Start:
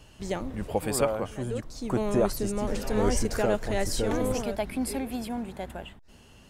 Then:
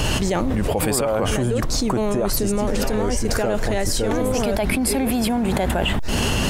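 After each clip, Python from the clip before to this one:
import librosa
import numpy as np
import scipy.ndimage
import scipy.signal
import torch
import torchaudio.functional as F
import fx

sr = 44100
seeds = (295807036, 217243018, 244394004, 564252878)

y = fx.env_flatten(x, sr, amount_pct=100)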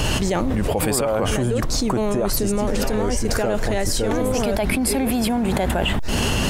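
y = x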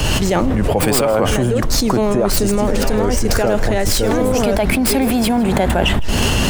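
y = fx.tracing_dist(x, sr, depth_ms=0.072)
y = fx.echo_feedback(y, sr, ms=161, feedback_pct=43, wet_db=-19.5)
y = fx.band_widen(y, sr, depth_pct=40)
y = y * 10.0 ** (5.5 / 20.0)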